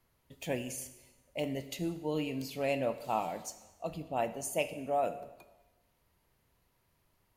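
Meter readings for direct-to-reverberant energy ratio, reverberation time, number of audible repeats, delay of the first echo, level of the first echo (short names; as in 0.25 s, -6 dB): 11.0 dB, 1.1 s, none, none, none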